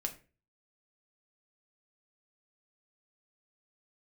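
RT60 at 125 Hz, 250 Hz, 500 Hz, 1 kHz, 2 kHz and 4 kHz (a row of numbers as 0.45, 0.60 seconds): 0.55, 0.40, 0.40, 0.30, 0.35, 0.25 seconds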